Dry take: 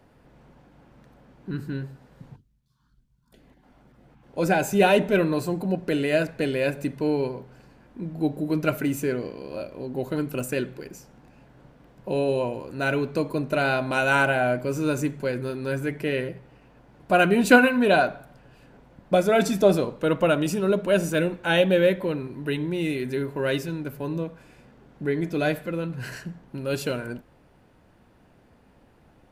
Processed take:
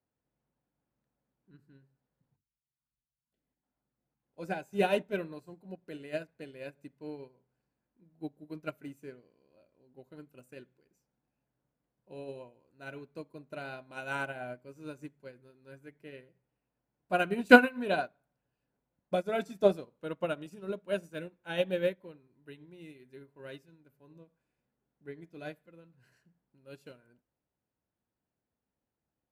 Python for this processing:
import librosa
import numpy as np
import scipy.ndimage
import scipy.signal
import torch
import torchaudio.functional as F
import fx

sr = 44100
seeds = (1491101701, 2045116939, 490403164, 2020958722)

y = scipy.signal.sosfilt(scipy.signal.butter(2, 45.0, 'highpass', fs=sr, output='sos'), x)
y = fx.upward_expand(y, sr, threshold_db=-31.0, expansion=2.5)